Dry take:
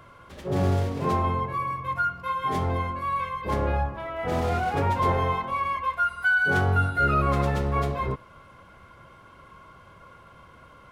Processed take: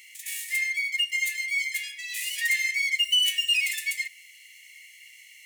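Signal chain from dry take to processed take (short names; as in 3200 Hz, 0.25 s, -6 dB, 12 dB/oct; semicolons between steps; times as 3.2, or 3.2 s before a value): brick-wall FIR high-pass 870 Hz; resonant high shelf 3200 Hz +10.5 dB, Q 1.5; speed mistake 7.5 ips tape played at 15 ips; gain +2.5 dB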